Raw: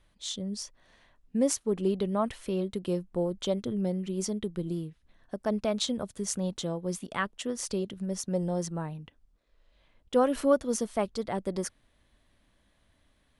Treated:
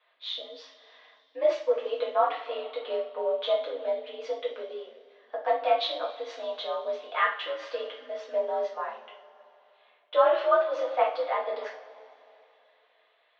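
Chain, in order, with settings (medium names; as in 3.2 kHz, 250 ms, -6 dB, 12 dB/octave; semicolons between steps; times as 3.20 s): mistuned SSB +65 Hz 470–3600 Hz; two-slope reverb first 0.4 s, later 2.9 s, from -21 dB, DRR -6 dB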